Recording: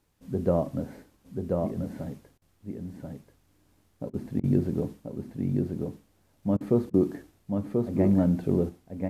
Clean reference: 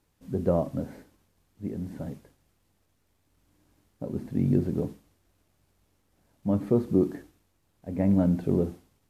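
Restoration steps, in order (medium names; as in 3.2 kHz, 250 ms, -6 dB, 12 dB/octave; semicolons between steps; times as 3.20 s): interpolate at 2.38/4.10/4.40/6.57/6.90 s, 36 ms; inverse comb 1035 ms -3.5 dB; trim 0 dB, from 8.69 s +5 dB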